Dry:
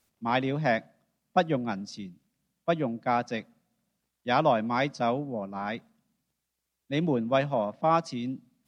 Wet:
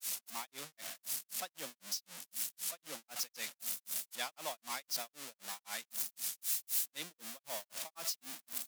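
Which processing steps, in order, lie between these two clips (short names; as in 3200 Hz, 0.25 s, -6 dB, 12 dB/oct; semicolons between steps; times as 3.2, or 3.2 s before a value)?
zero-crossing step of -24.5 dBFS; differentiator; grains 0.217 s, grains 3.9/s, pitch spread up and down by 0 st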